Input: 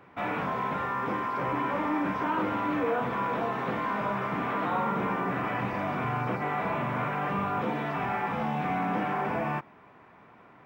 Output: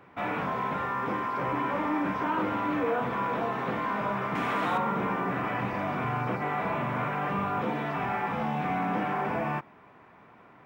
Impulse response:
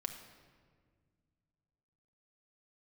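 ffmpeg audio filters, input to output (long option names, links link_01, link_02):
-filter_complex "[0:a]asettb=1/sr,asplit=3[link_01][link_02][link_03];[link_01]atrim=end=4.354[link_04];[link_02]atrim=start=4.35:end=4.78,asetpts=PTS-STARTPTS,afade=type=in:duration=0.004:curve=qsin,afade=type=out:start_time=0.426:duration=0.004:curve=qsin,equalizer=frequency=8200:width=0.34:gain=11.5[link_05];[link_03]atrim=start=4.776[link_06];[link_04][link_05]acrossfade=duration=0.004:curve1=hsin:curve2=qsin[link_07];[link_07][link_06]acrossfade=duration=0.004:curve1=qsin:curve2=hsin"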